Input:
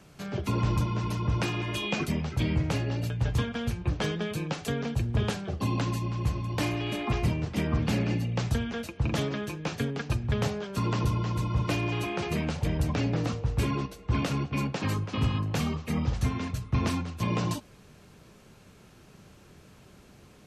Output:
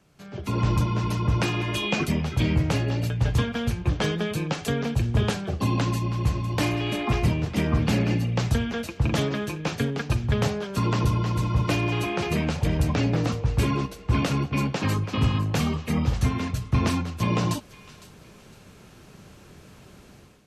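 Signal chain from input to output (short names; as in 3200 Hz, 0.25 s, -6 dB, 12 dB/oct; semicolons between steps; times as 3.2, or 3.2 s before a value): AGC gain up to 13 dB; thin delay 0.508 s, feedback 32%, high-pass 1600 Hz, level -16 dB; gain -8 dB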